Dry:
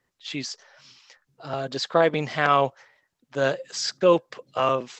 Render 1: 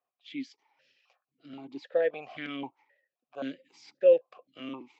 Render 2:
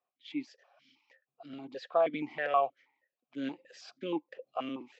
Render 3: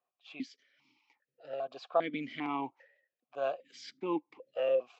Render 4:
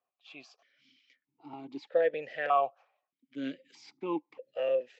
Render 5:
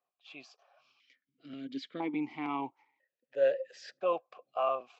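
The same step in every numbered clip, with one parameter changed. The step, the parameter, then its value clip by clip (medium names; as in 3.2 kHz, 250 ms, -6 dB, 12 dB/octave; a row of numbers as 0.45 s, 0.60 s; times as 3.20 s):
stepped vowel filter, rate: 3.8 Hz, 6.3 Hz, 2.5 Hz, 1.6 Hz, 1 Hz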